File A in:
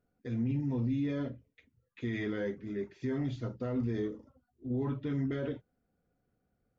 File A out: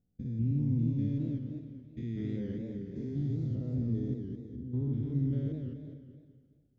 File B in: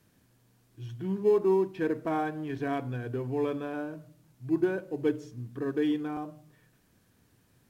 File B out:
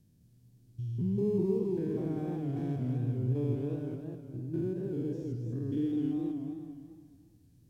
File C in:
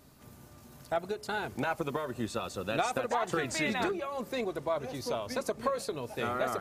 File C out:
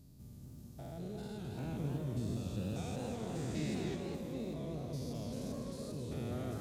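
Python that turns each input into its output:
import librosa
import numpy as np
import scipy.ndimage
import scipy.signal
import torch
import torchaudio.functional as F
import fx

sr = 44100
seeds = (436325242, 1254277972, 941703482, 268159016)

y = fx.spec_steps(x, sr, hold_ms=200)
y = fx.curve_eq(y, sr, hz=(160.0, 1300.0, 4800.0), db=(0, -25, -11))
y = fx.echo_feedback(y, sr, ms=260, feedback_pct=35, wet_db=-13)
y = fx.echo_warbled(y, sr, ms=210, feedback_pct=43, rate_hz=2.8, cents=197, wet_db=-4.5)
y = F.gain(torch.from_numpy(y), 5.0).numpy()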